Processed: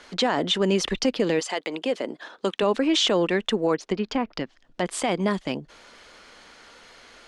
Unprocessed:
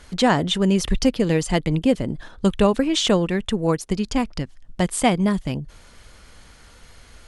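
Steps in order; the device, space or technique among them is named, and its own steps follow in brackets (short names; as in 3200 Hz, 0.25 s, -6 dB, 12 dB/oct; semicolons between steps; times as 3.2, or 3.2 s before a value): DJ mixer with the lows and highs turned down (three-band isolator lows -22 dB, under 240 Hz, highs -16 dB, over 6600 Hz; limiter -15.5 dBFS, peak gain reduction 11.5 dB); 1.39–2.61 HPF 580 Hz -> 230 Hz 12 dB/oct; 3.73–4.86 treble ducked by the level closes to 2000 Hz, closed at -24 dBFS; gain +3 dB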